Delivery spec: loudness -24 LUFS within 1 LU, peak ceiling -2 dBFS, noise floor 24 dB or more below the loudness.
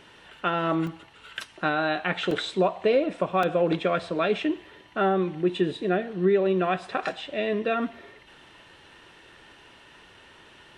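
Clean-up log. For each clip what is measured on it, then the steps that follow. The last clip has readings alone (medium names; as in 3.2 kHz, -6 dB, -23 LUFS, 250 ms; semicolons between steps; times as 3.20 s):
dropouts 3; longest dropout 2.9 ms; loudness -26.0 LUFS; peak level -10.5 dBFS; loudness target -24.0 LUFS
-> interpolate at 0.87/2.31/3.43 s, 2.9 ms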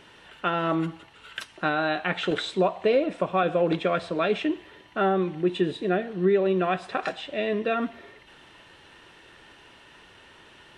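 dropouts 0; loudness -26.0 LUFS; peak level -10.5 dBFS; loudness target -24.0 LUFS
-> trim +2 dB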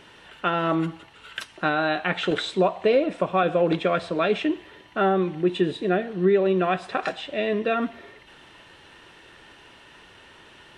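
loudness -24.0 LUFS; peak level -8.5 dBFS; noise floor -51 dBFS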